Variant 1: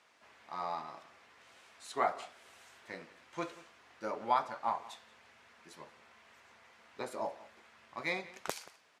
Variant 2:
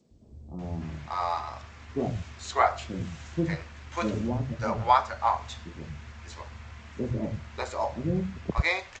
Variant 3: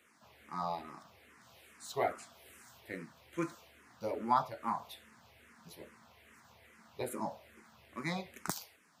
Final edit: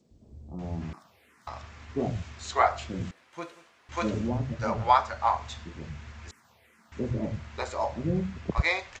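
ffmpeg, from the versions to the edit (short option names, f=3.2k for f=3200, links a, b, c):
-filter_complex "[2:a]asplit=2[a][b];[1:a]asplit=4[c][d][e][f];[c]atrim=end=0.932[g];[a]atrim=start=0.928:end=1.472[h];[d]atrim=start=1.468:end=3.112[i];[0:a]atrim=start=3.108:end=3.892[j];[e]atrim=start=3.888:end=6.312[k];[b]atrim=start=6.308:end=6.922[l];[f]atrim=start=6.918[m];[g][h]acrossfade=d=0.004:c1=hsin:c2=hsin[n];[n][i]acrossfade=d=0.004:c1=hsin:c2=hsin[o];[o][j]acrossfade=d=0.004:c1=hsin:c2=hsin[p];[p][k]acrossfade=d=0.004:c1=hsin:c2=hsin[q];[q][l]acrossfade=d=0.004:c1=hsin:c2=hsin[r];[r][m]acrossfade=d=0.004:c1=hsin:c2=hsin"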